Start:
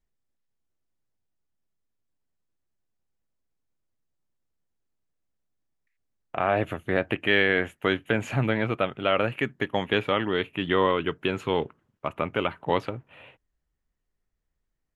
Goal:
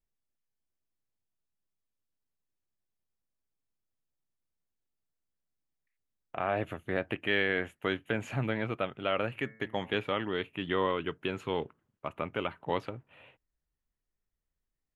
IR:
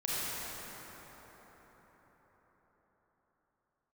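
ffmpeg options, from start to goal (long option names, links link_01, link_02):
-filter_complex "[0:a]asettb=1/sr,asplit=3[link_01][link_02][link_03];[link_01]atrim=end=9.304[link_04];[link_02]atrim=start=9.3:end=9.95,asetpts=PTS-STARTPTS,afade=type=in:duration=0.004:curve=qsin,afade=type=out:start_time=0.646:duration=0.004:curve=qsin,bandreject=frequency=110.2:width_type=h:width=4,bandreject=frequency=220.4:width_type=h:width=4,bandreject=frequency=330.6:width_type=h:width=4,bandreject=frequency=440.8:width_type=h:width=4,bandreject=frequency=551:width_type=h:width=4,bandreject=frequency=661.2:width_type=h:width=4,bandreject=frequency=771.4:width_type=h:width=4,bandreject=frequency=881.6:width_type=h:width=4,bandreject=frequency=991.8:width_type=h:width=4,bandreject=frequency=1102:width_type=h:width=4,bandreject=frequency=1212.2:width_type=h:width=4,bandreject=frequency=1322.4:width_type=h:width=4,bandreject=frequency=1432.6:width_type=h:width=4,bandreject=frequency=1542.8:width_type=h:width=4,bandreject=frequency=1653:width_type=h:width=4,bandreject=frequency=1763.2:width_type=h:width=4,bandreject=frequency=1873.4:width_type=h:width=4,bandreject=frequency=1983.6:width_type=h:width=4,bandreject=frequency=2093.8:width_type=h:width=4,bandreject=frequency=2204:width_type=h:width=4[link_05];[link_03]atrim=start=9.946[link_06];[link_04][link_05]acrossfade=duration=0.004:curve1=hsin:curve2=qsin[link_07];[link_07][link_06]acrossfade=duration=0.004:curve1=qsin:curve2=hsin,volume=-7dB"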